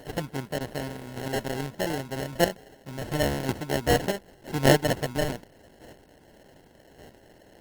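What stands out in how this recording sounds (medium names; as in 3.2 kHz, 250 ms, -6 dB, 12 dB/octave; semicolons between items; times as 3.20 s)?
aliases and images of a low sample rate 1.2 kHz, jitter 0%; chopped level 0.86 Hz, depth 60%, duty 10%; Opus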